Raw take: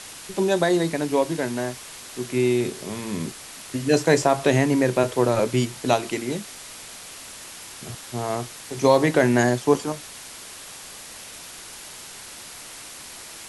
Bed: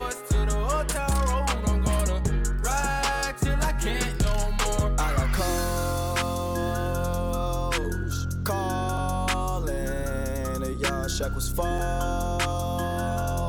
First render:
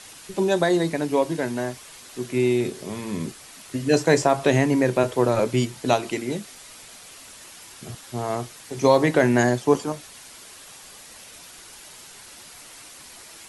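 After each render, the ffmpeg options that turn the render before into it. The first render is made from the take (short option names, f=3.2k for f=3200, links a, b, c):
-af "afftdn=nr=6:nf=-41"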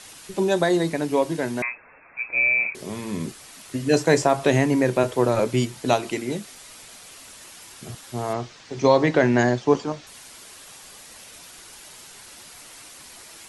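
-filter_complex "[0:a]asettb=1/sr,asplit=3[a][b][c];[a]atrim=end=1.624[d];[b]atrim=start=1.62:end=2.75,asetpts=PTS-STARTPTS,afade=t=in:d=0.004:c=qsin,afade=t=out:st=1.126:d=0.004:c=qsin,lowpass=f=2.3k:t=q:w=0.5098,lowpass=f=2.3k:t=q:w=0.6013,lowpass=f=2.3k:t=q:w=0.9,lowpass=f=2.3k:t=q:w=2.563,afreqshift=-2700[e];[c]atrim=start=2.746[f];[d][e]acrossfade=d=0.004:c1=hsin:c2=qsin[g];[g][f]acrossfade=d=0.004:c1=qsin:c2=hsin,asettb=1/sr,asplit=3[h][i][j];[h]atrim=end=8.334[k];[i]atrim=start=8.33:end=10.07,asetpts=PTS-STARTPTS,afade=t=in:d=0.004:c=qsin,afade=t=out:st=1.736:d=0.004:c=qsin,lowpass=f=6.1k:w=0.5412,lowpass=f=6.1k:w=1.3066[l];[j]atrim=start=10.066[m];[k][l]acrossfade=d=0.004:c1=hsin:c2=qsin[n];[n][m]acrossfade=d=0.004:c1=qsin:c2=hsin"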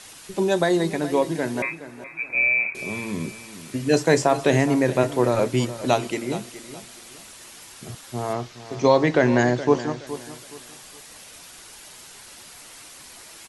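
-af "aecho=1:1:420|840|1260:0.2|0.0579|0.0168"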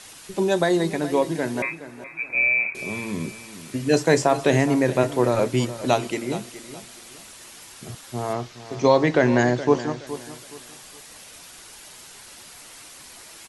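-af anull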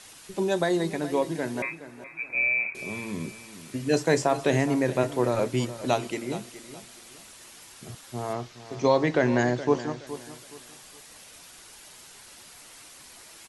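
-af "volume=-4.5dB"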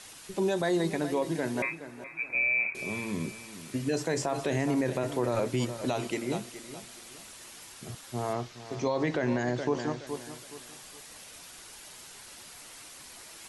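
-af "alimiter=limit=-19.5dB:level=0:latency=1:release=52,areverse,acompressor=mode=upward:threshold=-45dB:ratio=2.5,areverse"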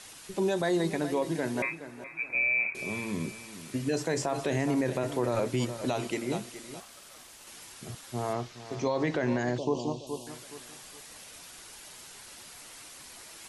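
-filter_complex "[0:a]asettb=1/sr,asplit=3[a][b][c];[a]atrim=end=6.804[d];[b]atrim=start=6.8:end=7.47,asetpts=PTS-STARTPTS,afade=t=in:d=0.004:c=qsin,afade=t=out:st=0.666:d=0.004:c=qsin,aeval=exprs='val(0)*sin(2*PI*930*n/s)':c=same[e];[c]atrim=start=7.466[f];[d][e]acrossfade=d=0.004:c1=hsin:c2=qsin[g];[g][f]acrossfade=d=0.004:c1=qsin:c2=hsin,asettb=1/sr,asplit=3[h][i][j];[h]atrim=end=9.584[k];[i]atrim=start=9.58:end=10.27,asetpts=PTS-STARTPTS,afade=t=in:d=0.004:c=qsin,afade=t=out:st=0.686:d=0.004:c=qsin,asuperstop=centerf=1700:order=12:qfactor=1.1[l];[j]atrim=start=10.266[m];[k][l]acrossfade=d=0.004:c1=hsin:c2=qsin[n];[n][m]acrossfade=d=0.004:c1=qsin:c2=hsin"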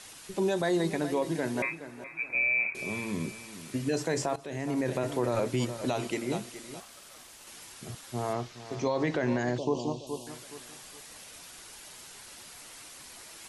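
-filter_complex "[0:a]asplit=2[a][b];[a]atrim=end=4.36,asetpts=PTS-STARTPTS,afade=t=out:st=4.356:d=0.004:c=hsin:silence=0.141254[c];[b]atrim=start=4.36,asetpts=PTS-STARTPTS,afade=t=in:d=0.57:silence=0.141254[d];[c][d]concat=n=2:v=0:a=1"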